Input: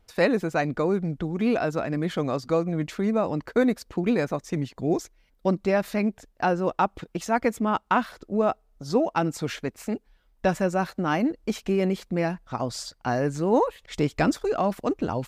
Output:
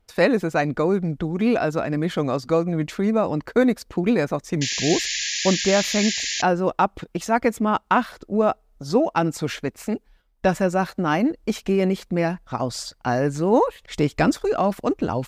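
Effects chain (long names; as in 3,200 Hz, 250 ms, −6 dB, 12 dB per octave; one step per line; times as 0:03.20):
noise gate −57 dBFS, range −7 dB
sound drawn into the spectrogram noise, 0:04.61–0:06.42, 1,600–7,300 Hz −30 dBFS
level +3.5 dB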